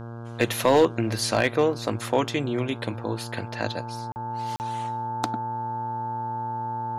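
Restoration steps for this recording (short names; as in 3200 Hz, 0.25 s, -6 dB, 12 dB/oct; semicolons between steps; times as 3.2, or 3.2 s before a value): clip repair -10.5 dBFS; de-hum 116.7 Hz, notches 14; notch 880 Hz, Q 30; interpolate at 4.12/4.56, 39 ms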